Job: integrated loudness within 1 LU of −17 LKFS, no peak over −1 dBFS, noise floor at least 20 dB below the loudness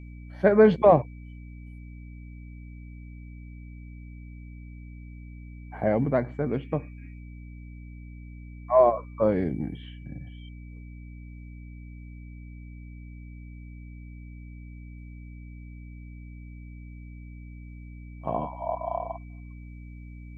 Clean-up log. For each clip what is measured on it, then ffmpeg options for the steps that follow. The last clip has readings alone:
mains hum 60 Hz; hum harmonics up to 300 Hz; level of the hum −40 dBFS; interfering tone 2,300 Hz; level of the tone −57 dBFS; integrated loudness −24.5 LKFS; sample peak −6.0 dBFS; target loudness −17.0 LKFS
→ -af "bandreject=frequency=60:width_type=h:width=6,bandreject=frequency=120:width_type=h:width=6,bandreject=frequency=180:width_type=h:width=6,bandreject=frequency=240:width_type=h:width=6,bandreject=frequency=300:width_type=h:width=6"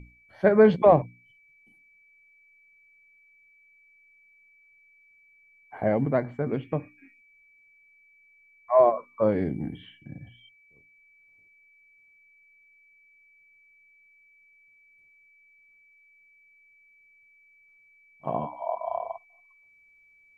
mains hum none found; interfering tone 2,300 Hz; level of the tone −57 dBFS
→ -af "bandreject=frequency=2300:width=30"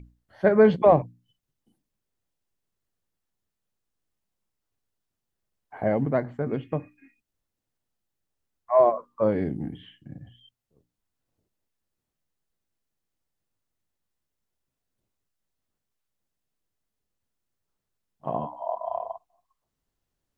interfering tone none found; integrated loudness −24.5 LKFS; sample peak −6.5 dBFS; target loudness −17.0 LKFS
→ -af "volume=7.5dB,alimiter=limit=-1dB:level=0:latency=1"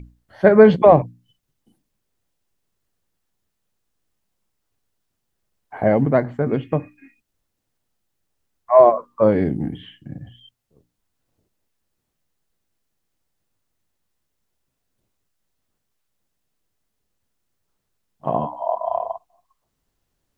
integrated loudness −17.0 LKFS; sample peak −1.0 dBFS; background noise floor −76 dBFS

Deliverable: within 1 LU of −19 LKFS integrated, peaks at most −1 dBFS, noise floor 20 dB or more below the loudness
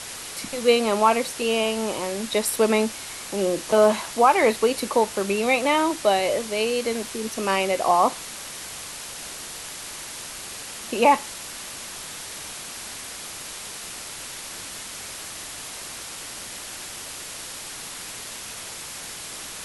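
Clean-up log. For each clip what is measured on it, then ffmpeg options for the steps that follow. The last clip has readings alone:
background noise floor −37 dBFS; target noise floor −45 dBFS; integrated loudness −25.0 LKFS; sample peak −5.0 dBFS; target loudness −19.0 LKFS
→ -af "afftdn=noise_reduction=8:noise_floor=-37"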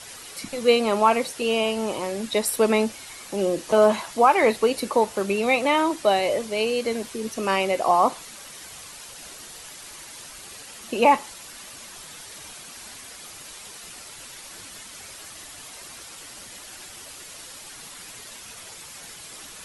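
background noise floor −42 dBFS; integrated loudness −22.0 LKFS; sample peak −5.5 dBFS; target loudness −19.0 LKFS
→ -af "volume=3dB"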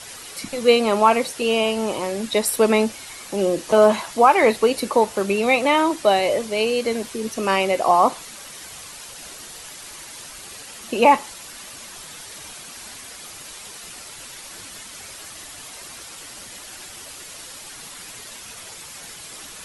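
integrated loudness −19.0 LKFS; sample peak −2.5 dBFS; background noise floor −39 dBFS

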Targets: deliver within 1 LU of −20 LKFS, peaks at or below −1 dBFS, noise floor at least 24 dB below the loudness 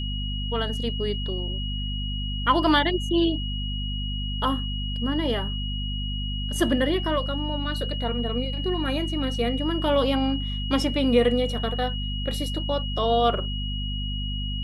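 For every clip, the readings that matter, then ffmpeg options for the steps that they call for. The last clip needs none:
mains hum 50 Hz; hum harmonics up to 250 Hz; level of the hum −27 dBFS; interfering tone 2,900 Hz; level of the tone −33 dBFS; integrated loudness −25.5 LKFS; sample peak −8.0 dBFS; target loudness −20.0 LKFS
→ -af "bandreject=frequency=50:width_type=h:width=4,bandreject=frequency=100:width_type=h:width=4,bandreject=frequency=150:width_type=h:width=4,bandreject=frequency=200:width_type=h:width=4,bandreject=frequency=250:width_type=h:width=4"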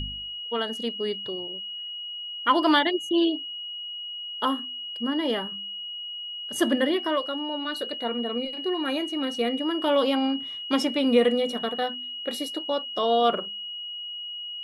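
mains hum none found; interfering tone 2,900 Hz; level of the tone −33 dBFS
→ -af "bandreject=frequency=2900:width=30"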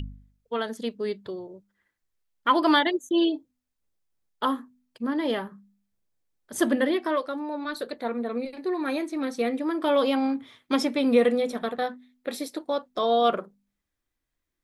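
interfering tone none found; integrated loudness −26.5 LKFS; sample peak −8.0 dBFS; target loudness −20.0 LKFS
→ -af "volume=6.5dB"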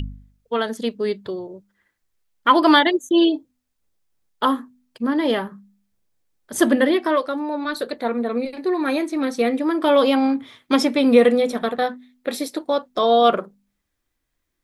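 integrated loudness −20.0 LKFS; sample peak −1.5 dBFS; background noise floor −76 dBFS

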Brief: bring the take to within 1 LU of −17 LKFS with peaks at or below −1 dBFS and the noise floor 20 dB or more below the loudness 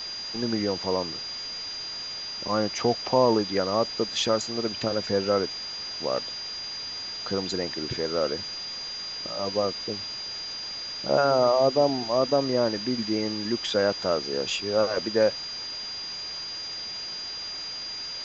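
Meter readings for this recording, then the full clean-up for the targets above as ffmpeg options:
interfering tone 4,800 Hz; level of the tone −33 dBFS; background noise floor −36 dBFS; target noise floor −47 dBFS; integrated loudness −27.0 LKFS; sample peak −8.5 dBFS; target loudness −17.0 LKFS
→ -af "bandreject=frequency=4800:width=30"
-af "afftdn=noise_reduction=11:noise_floor=-36"
-af "volume=10dB,alimiter=limit=-1dB:level=0:latency=1"

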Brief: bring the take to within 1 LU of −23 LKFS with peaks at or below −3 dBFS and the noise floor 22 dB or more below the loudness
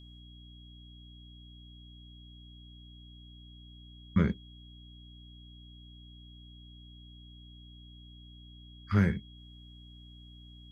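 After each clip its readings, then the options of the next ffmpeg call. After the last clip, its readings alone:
mains hum 60 Hz; hum harmonics up to 300 Hz; level of the hum −50 dBFS; interfering tone 3,300 Hz; level of the tone −56 dBFS; integrated loudness −30.5 LKFS; sample peak −13.5 dBFS; target loudness −23.0 LKFS
→ -af "bandreject=frequency=60:width_type=h:width=6,bandreject=frequency=120:width_type=h:width=6,bandreject=frequency=180:width_type=h:width=6,bandreject=frequency=240:width_type=h:width=6,bandreject=frequency=300:width_type=h:width=6"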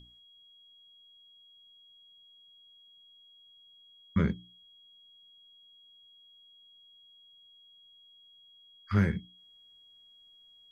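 mains hum none found; interfering tone 3,300 Hz; level of the tone −56 dBFS
→ -af "bandreject=frequency=3300:width=30"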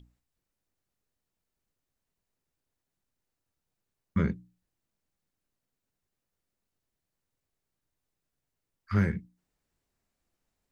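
interfering tone none found; integrated loudness −31.0 LKFS; sample peak −14.5 dBFS; target loudness −23.0 LKFS
→ -af "volume=8dB"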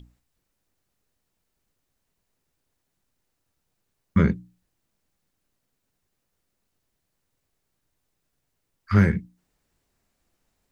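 integrated loudness −23.0 LKFS; sample peak −6.5 dBFS; background noise floor −78 dBFS

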